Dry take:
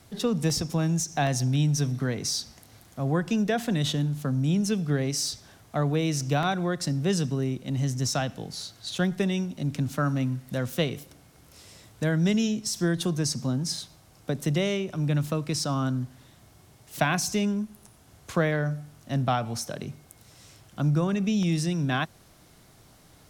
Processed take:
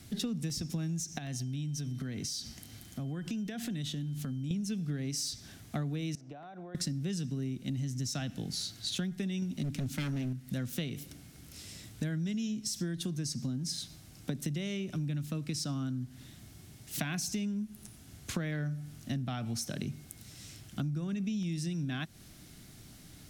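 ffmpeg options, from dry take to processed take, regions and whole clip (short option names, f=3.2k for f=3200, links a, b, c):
-filter_complex "[0:a]asettb=1/sr,asplit=3[a][b][c];[a]atrim=end=1.184[d];[b]atrim=start=1.18:end=4.51,asetpts=PTS-STARTPTS,afade=t=in:d=0.004:c=qsin,afade=t=out:st=3.326:d=0.004:c=qsin,acompressor=threshold=-37dB:ratio=5:attack=3.2:release=140:knee=1:detection=peak,aeval=exprs='val(0)+0.000501*sin(2*PI*3100*n/s)':c=same[e];[c]atrim=start=4.506[f];[d][e]acrossfade=d=0.004:c1=hsin:c2=qsin[g];[g][f]acrossfade=d=0.004:c1=qsin:c2=hsin,asettb=1/sr,asplit=3[h][i][j];[h]atrim=end=6.154[k];[i]atrim=start=6.15:end=6.75,asetpts=PTS-STARTPTS,afade=t=in:d=0.004:c=qsin,afade=t=out:st=0.596:d=0.004:c=qsin,bandpass=f=690:t=q:w=2,acompressor=threshold=-39dB:ratio=16:attack=3.2:release=140:knee=1:detection=peak[l];[j]atrim=start=6.746[m];[k][l]acrossfade=d=0.004:c1=hsin:c2=qsin[n];[n][m]acrossfade=d=0.004:c1=qsin:c2=hsin,asettb=1/sr,asplit=3[o][p][q];[o]atrim=end=9.424[r];[p]atrim=start=9.42:end=10.33,asetpts=PTS-STARTPTS,afade=t=in:d=0.004:c=qsin,afade=t=out:st=0.906:d=0.004:c=qsin,acontrast=26,aeval=exprs='0.112*(abs(mod(val(0)/0.112+3,4)-2)-1)':c=same[s];[q]atrim=start=10.326[t];[r][s]acrossfade=d=0.004:c1=hsin:c2=qsin[u];[u][t]acrossfade=d=0.004:c1=qsin:c2=hsin,acontrast=50,equalizer=f=250:t=o:w=1:g=4,equalizer=f=500:t=o:w=1:g=-8,equalizer=f=1k:t=o:w=1:g=-10,acompressor=threshold=-29dB:ratio=10,volume=-3dB"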